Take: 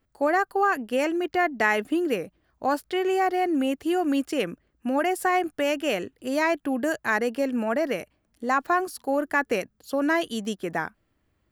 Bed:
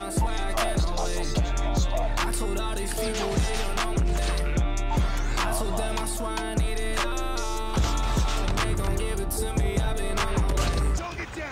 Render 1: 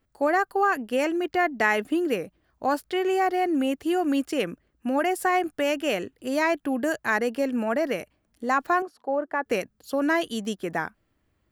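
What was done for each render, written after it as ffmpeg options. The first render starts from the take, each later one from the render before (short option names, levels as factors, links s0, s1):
-filter_complex "[0:a]asettb=1/sr,asplit=3[s0][s1][s2];[s0]atrim=end=8.824[s3];[s1]atrim=start=8.82:end=9.46,asetpts=PTS-STARTPTS,afade=t=in:d=0.004:c=qsin,afade=t=out:st=0.636:d=0.004:c=qsin,bandpass=f=660:t=q:w=0.88[s4];[s2]atrim=start=9.456[s5];[s3][s4]acrossfade=d=0.004:c1=hsin:c2=qsin[s6];[s6][s5]acrossfade=d=0.004:c1=qsin:c2=hsin"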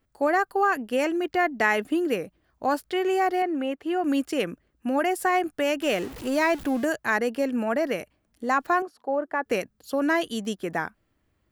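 -filter_complex "[0:a]asettb=1/sr,asplit=3[s0][s1][s2];[s0]atrim=end=3.424[s3];[s1]atrim=start=3.42:end=4.04,asetpts=PTS-STARTPTS,afade=t=in:d=0.004:c=qsin,afade=t=out:st=0.616:d=0.004:c=qsin,bass=f=250:g=-11,treble=f=4000:g=-14[s4];[s2]atrim=start=4.036[s5];[s3][s4]acrossfade=d=0.004:c1=hsin:c2=qsin[s6];[s6][s5]acrossfade=d=0.004:c1=qsin:c2=hsin,asettb=1/sr,asplit=3[s7][s8][s9];[s7]atrim=end=5.824[s10];[s8]atrim=start=5.82:end=6.85,asetpts=PTS-STARTPTS,afade=t=in:d=0.004:c=qsin,afade=t=out:st=1.026:d=0.004:c=qsin,aeval=exprs='val(0)+0.5*0.0188*sgn(val(0))':c=same[s11];[s9]atrim=start=6.846[s12];[s10][s11]acrossfade=d=0.004:c1=hsin:c2=qsin[s13];[s13][s12]acrossfade=d=0.004:c1=qsin:c2=hsin"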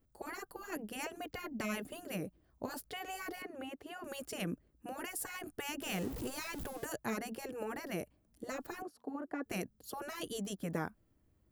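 -af "afftfilt=real='re*lt(hypot(re,im),0.224)':imag='im*lt(hypot(re,im),0.224)':win_size=1024:overlap=0.75,equalizer=f=2200:w=0.36:g=-11.5"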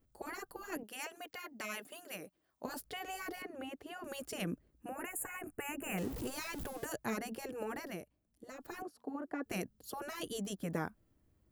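-filter_complex "[0:a]asettb=1/sr,asplit=3[s0][s1][s2];[s0]atrim=end=0.834[s3];[s1]atrim=start=0.83:end=2.65,asetpts=PTS-STARTPTS,afade=t=in:d=0.004:c=qsin,afade=t=out:st=1.816:d=0.004:c=qsin,highpass=f=880:p=1[s4];[s2]atrim=start=2.646[s5];[s3][s4]acrossfade=d=0.004:c1=hsin:c2=qsin[s6];[s6][s5]acrossfade=d=0.004:c1=qsin:c2=hsin,asettb=1/sr,asplit=3[s7][s8][s9];[s7]atrim=end=4.884[s10];[s8]atrim=start=4.88:end=5.98,asetpts=PTS-STARTPTS,afade=t=in:d=0.004:c=qsin,afade=t=out:st=1.096:d=0.004:c=qsin,asuperstop=centerf=4400:order=12:qfactor=1.1[s11];[s9]atrim=start=5.976[s12];[s10][s11]acrossfade=d=0.004:c1=hsin:c2=qsin[s13];[s13][s12]acrossfade=d=0.004:c1=qsin:c2=hsin,asplit=3[s14][s15][s16];[s14]atrim=end=8.01,asetpts=PTS-STARTPTS,afade=t=out:st=7.82:d=0.19:silence=0.375837[s17];[s15]atrim=start=8.01:end=8.58,asetpts=PTS-STARTPTS,volume=0.376[s18];[s16]atrim=start=8.58,asetpts=PTS-STARTPTS,afade=t=in:d=0.19:silence=0.375837[s19];[s17][s18][s19]concat=n=3:v=0:a=1"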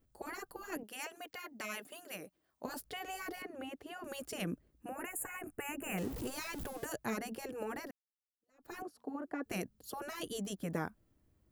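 -filter_complex "[0:a]asplit=2[s0][s1];[s0]atrim=end=7.91,asetpts=PTS-STARTPTS,afade=t=out:st=7.906:d=0.004:c=hsin[s2];[s1]atrim=start=7.91,asetpts=PTS-STARTPTS,afade=t=in:d=0.81:c=exp[s3];[s2][s3]concat=n=2:v=0:a=1"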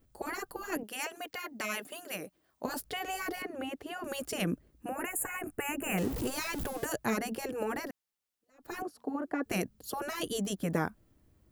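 -af "volume=2.11"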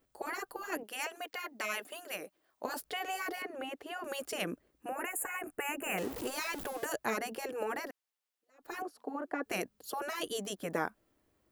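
-af "bass=f=250:g=-15,treble=f=4000:g=-3"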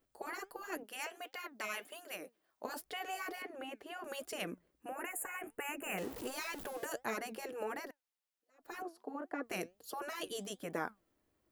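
-af "flanger=delay=2.5:depth=3.7:regen=85:speed=1.4:shape=triangular"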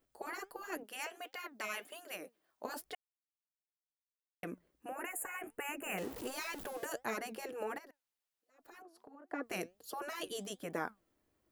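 -filter_complex "[0:a]asettb=1/sr,asplit=3[s0][s1][s2];[s0]atrim=end=7.784[s3];[s1]atrim=start=7.78:end=9.3,asetpts=PTS-STARTPTS,afade=t=in:d=0.004:c=qsin,afade=t=out:st=1.516:d=0.004:c=qsin,acompressor=threshold=0.00224:ratio=6:attack=3.2:release=140:knee=1:detection=peak[s4];[s2]atrim=start=9.296[s5];[s3][s4]acrossfade=d=0.004:c1=hsin:c2=qsin[s6];[s6][s5]acrossfade=d=0.004:c1=qsin:c2=hsin,asplit=3[s7][s8][s9];[s7]atrim=end=2.95,asetpts=PTS-STARTPTS,afade=t=out:st=2.946:d=0.004:c=hsin[s10];[s8]atrim=start=2.95:end=4.43,asetpts=PTS-STARTPTS,volume=0[s11];[s9]atrim=start=4.43,asetpts=PTS-STARTPTS,afade=t=in:d=0.004:c=hsin[s12];[s10][s11][s12]concat=n=3:v=0:a=1"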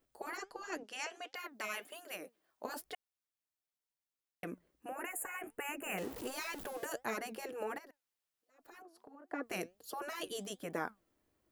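-filter_complex "[0:a]asettb=1/sr,asplit=3[s0][s1][s2];[s0]atrim=end=0.374[s3];[s1]atrim=start=0.37:end=1.35,asetpts=PTS-STARTPTS,afade=t=in:d=0.004:c=qsin,afade=t=out:st=0.976:d=0.004:c=qsin,lowpass=f=6100:t=q:w=1.8[s4];[s2]atrim=start=1.346[s5];[s3][s4]acrossfade=d=0.004:c1=hsin:c2=qsin[s6];[s6][s5]acrossfade=d=0.004:c1=qsin:c2=hsin"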